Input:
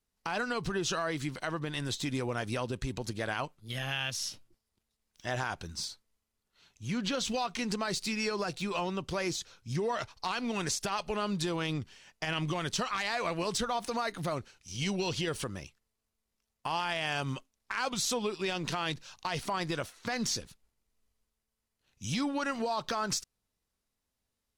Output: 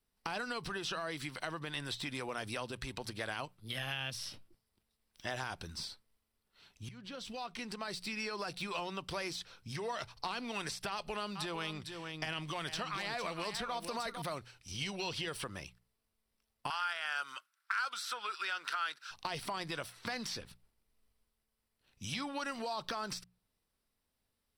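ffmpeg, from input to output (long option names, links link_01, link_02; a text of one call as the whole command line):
ffmpeg -i in.wav -filter_complex "[0:a]asettb=1/sr,asplit=3[link_01][link_02][link_03];[link_01]atrim=end=10.904[link_04];[link_02]atrim=start=10.9:end=14.22,asetpts=PTS-STARTPTS,afade=type=in:duration=0.004:curve=qsin,afade=type=out:start_time=3.316:duration=0.004:curve=qsin,aecho=1:1:452:0.299,atrim=end_sample=146412[link_05];[link_03]atrim=start=14.216[link_06];[link_04][link_05]acrossfade=duration=0.004:curve1=hsin:curve2=qsin[link_07];[link_07][link_06]acrossfade=duration=0.004:curve1=qsin:curve2=hsin,asettb=1/sr,asplit=3[link_08][link_09][link_10];[link_08]atrim=end=16.704[link_11];[link_09]atrim=start=16.7:end=19.11,asetpts=PTS-STARTPTS,afade=type=in:duration=0.004:curve=qsin,afade=type=out:start_time=2.406:duration=0.004:curve=qsin,highpass=frequency=1400:width_type=q:width=8.7[link_12];[link_10]atrim=start=19.106[link_13];[link_11][link_12]acrossfade=duration=0.004:curve1=hsin:curve2=qsin[link_14];[link_14][link_13]acrossfade=duration=0.004:curve1=qsin:curve2=hsin,asplit=2[link_15][link_16];[link_15]atrim=end=6.89,asetpts=PTS-STARTPTS,afade=type=out:start_time=6.886:duration=0.004:curve=hsin:silence=0.0841395[link_17];[link_16]atrim=start=6.89,asetpts=PTS-STARTPTS,afade=type=in:duration=1.96:silence=0.0841395[link_18];[link_17][link_18]concat=n=2:v=0:a=1,equalizer=frequency=6700:width=6.2:gain=-14.5,bandreject=frequency=60:width_type=h:width=6,bandreject=frequency=120:width_type=h:width=6,bandreject=frequency=180:width_type=h:width=6,acrossover=split=650|3400[link_19][link_20][link_21];[link_19]acompressor=threshold=-46dB:ratio=4[link_22];[link_20]acompressor=threshold=-41dB:ratio=4[link_23];[link_21]acompressor=threshold=-46dB:ratio=4[link_24];[link_22][link_23][link_24]amix=inputs=3:normalize=0,volume=1.5dB" out.wav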